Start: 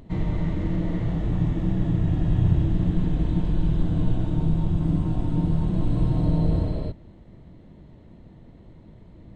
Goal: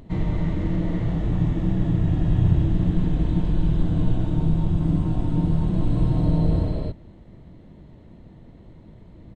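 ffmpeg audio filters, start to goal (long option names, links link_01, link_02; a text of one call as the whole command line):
ffmpeg -i in.wav -af "aresample=32000,aresample=44100,volume=1.5dB" out.wav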